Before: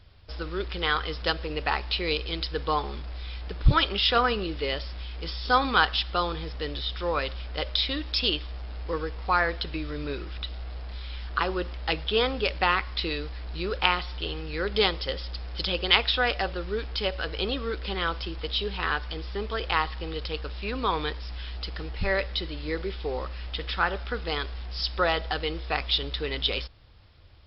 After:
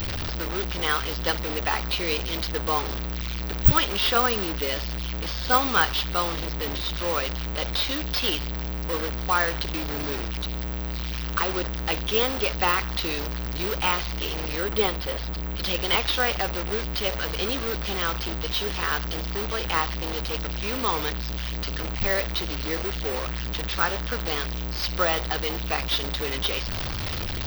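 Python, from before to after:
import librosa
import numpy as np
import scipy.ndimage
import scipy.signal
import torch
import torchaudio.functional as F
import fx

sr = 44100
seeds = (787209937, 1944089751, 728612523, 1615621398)

y = fx.delta_mod(x, sr, bps=32000, step_db=-24.0)
y = fx.high_shelf(y, sr, hz=4800.0, db=-11.0, at=(14.6, 15.63))
y = (np.kron(y[::2], np.eye(2)[0]) * 2)[:len(y)]
y = fx.doppler_dist(y, sr, depth_ms=0.2)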